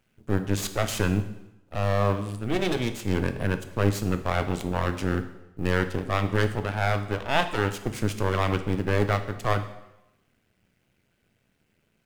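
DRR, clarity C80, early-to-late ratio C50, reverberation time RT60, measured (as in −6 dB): 8.5 dB, 14.5 dB, 11.5 dB, 0.90 s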